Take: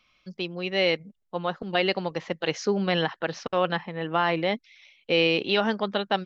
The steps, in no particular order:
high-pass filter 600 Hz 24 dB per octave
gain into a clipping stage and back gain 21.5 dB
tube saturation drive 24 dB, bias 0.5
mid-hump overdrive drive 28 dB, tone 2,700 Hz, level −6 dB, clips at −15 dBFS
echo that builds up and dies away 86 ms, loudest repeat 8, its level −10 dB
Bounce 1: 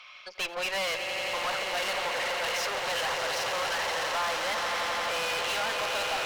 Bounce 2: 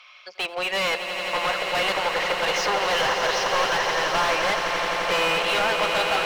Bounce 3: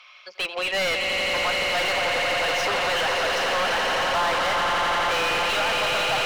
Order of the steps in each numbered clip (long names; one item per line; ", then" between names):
mid-hump overdrive, then echo that builds up and dies away, then gain into a clipping stage and back, then high-pass filter, then tube saturation
tube saturation, then high-pass filter, then mid-hump overdrive, then gain into a clipping stage and back, then echo that builds up and dies away
echo that builds up and dies away, then gain into a clipping stage and back, then high-pass filter, then tube saturation, then mid-hump overdrive